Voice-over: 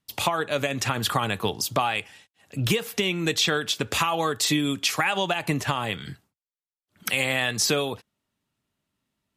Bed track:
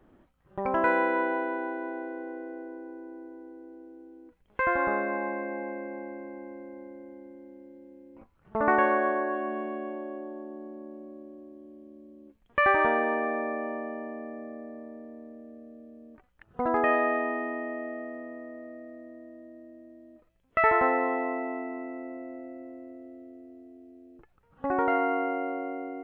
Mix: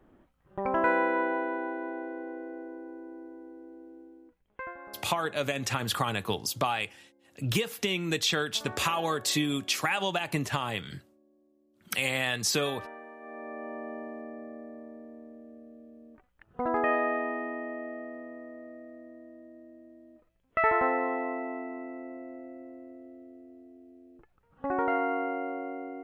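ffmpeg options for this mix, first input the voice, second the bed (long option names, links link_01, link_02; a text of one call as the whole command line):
ffmpeg -i stem1.wav -i stem2.wav -filter_complex "[0:a]adelay=4850,volume=-4.5dB[link_01];[1:a]volume=16.5dB,afade=type=out:start_time=3.98:duration=0.78:silence=0.112202,afade=type=in:start_time=13.19:duration=0.76:silence=0.133352[link_02];[link_01][link_02]amix=inputs=2:normalize=0" out.wav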